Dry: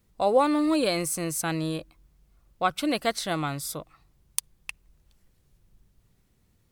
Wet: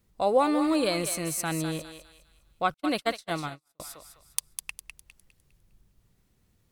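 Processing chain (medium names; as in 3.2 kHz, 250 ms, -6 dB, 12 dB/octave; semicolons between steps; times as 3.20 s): thinning echo 203 ms, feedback 36%, high-pass 790 Hz, level -7 dB; 2.74–3.80 s: gate -27 dBFS, range -46 dB; trim -1.5 dB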